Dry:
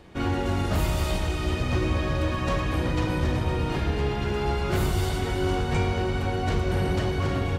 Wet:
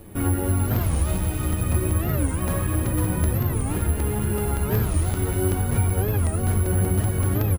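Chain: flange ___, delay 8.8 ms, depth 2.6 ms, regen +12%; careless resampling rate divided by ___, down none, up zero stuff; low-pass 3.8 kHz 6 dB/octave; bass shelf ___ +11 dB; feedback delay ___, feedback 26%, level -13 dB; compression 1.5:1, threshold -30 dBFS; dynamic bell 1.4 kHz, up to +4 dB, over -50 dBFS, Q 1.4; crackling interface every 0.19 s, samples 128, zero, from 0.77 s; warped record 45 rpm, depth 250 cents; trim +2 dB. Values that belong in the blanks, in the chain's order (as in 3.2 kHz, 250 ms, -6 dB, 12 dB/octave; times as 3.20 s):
1.4 Hz, 4×, 380 Hz, 339 ms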